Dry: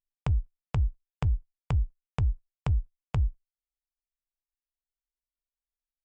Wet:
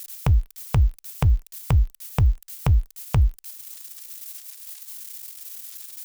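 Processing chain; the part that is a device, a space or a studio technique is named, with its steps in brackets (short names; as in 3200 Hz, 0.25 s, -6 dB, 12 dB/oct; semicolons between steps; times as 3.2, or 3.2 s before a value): budget class-D amplifier (switching dead time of 0.055 ms; switching spikes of -35 dBFS); gain +8 dB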